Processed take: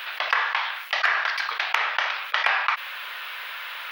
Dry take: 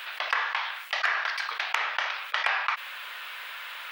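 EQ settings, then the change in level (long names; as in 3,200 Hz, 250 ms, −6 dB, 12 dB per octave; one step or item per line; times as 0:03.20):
parametric band 7,900 Hz −11.5 dB 0.41 octaves
+4.5 dB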